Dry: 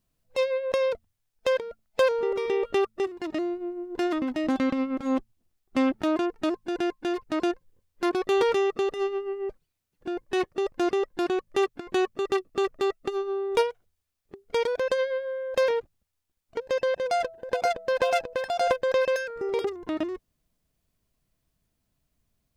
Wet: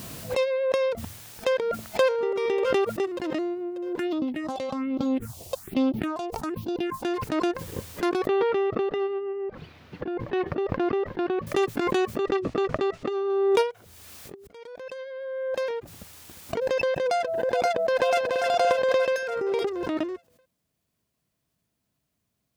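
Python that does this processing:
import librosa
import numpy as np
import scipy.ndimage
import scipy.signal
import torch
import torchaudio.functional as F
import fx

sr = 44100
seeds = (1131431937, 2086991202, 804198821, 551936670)

y = fx.echo_throw(x, sr, start_s=0.89, length_s=1.11, ms=590, feedback_pct=60, wet_db=-17.0)
y = fx.phaser_stages(y, sr, stages=4, low_hz=240.0, high_hz=1900.0, hz=1.2, feedback_pct=25, at=(3.99, 7.04))
y = fx.air_absorb(y, sr, metres=320.0, at=(8.27, 11.47))
y = fx.air_absorb(y, sr, metres=130.0, at=(12.17, 13.3))
y = fx.echo_throw(y, sr, start_s=17.84, length_s=0.58, ms=290, feedback_pct=55, wet_db=-5.0)
y = fx.edit(y, sr, fx.fade_in_span(start_s=14.47, length_s=2.29), tone=tone)
y = scipy.signal.sosfilt(scipy.signal.butter(2, 100.0, 'highpass', fs=sr, output='sos'), y)
y = fx.pre_swell(y, sr, db_per_s=23.0)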